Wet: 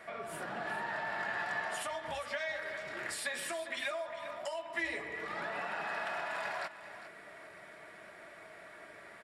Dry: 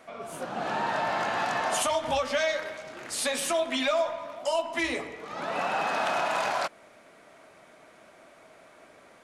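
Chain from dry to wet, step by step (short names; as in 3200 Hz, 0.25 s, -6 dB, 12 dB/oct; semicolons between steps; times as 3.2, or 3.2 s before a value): notch comb 260 Hz; compressor 4:1, threshold -40 dBFS, peak gain reduction 14.5 dB; bell 1800 Hz +10.5 dB 0.52 oct; notch 6300 Hz, Q 6.4; feedback echo 0.403 s, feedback 18%, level -13 dB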